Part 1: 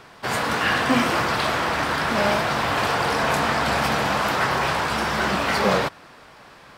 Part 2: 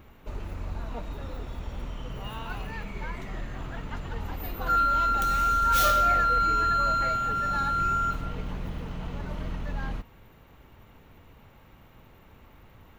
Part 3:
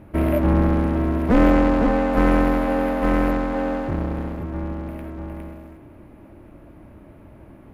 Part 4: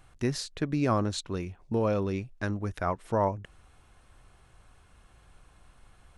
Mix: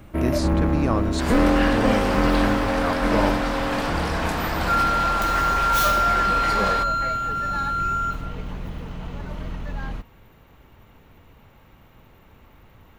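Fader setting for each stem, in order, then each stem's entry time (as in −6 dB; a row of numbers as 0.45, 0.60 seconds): −5.5, +2.0, −3.0, +1.5 decibels; 0.95, 0.00, 0.00, 0.00 seconds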